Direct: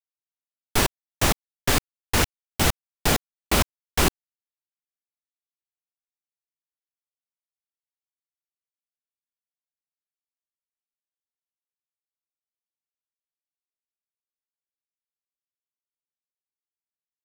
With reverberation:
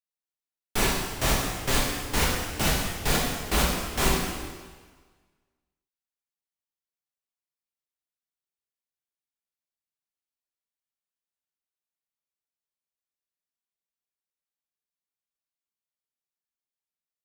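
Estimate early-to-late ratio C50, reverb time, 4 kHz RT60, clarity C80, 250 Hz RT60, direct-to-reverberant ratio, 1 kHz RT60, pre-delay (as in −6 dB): 0.5 dB, 1.5 s, 1.4 s, 3.0 dB, 1.5 s, −4.5 dB, 1.5 s, 5 ms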